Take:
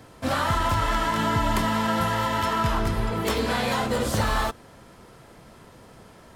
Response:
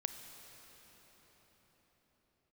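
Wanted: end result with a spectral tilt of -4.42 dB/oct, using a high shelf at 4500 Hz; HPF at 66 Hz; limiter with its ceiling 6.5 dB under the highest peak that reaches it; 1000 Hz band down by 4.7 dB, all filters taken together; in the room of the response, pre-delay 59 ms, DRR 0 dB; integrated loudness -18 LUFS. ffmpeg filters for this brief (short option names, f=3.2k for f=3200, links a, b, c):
-filter_complex "[0:a]highpass=66,equalizer=f=1k:t=o:g=-6,highshelf=f=4.5k:g=4,alimiter=limit=-19dB:level=0:latency=1,asplit=2[a][b];[1:a]atrim=start_sample=2205,adelay=59[c];[b][c]afir=irnorm=-1:irlink=0,volume=0dB[d];[a][d]amix=inputs=2:normalize=0,volume=7dB"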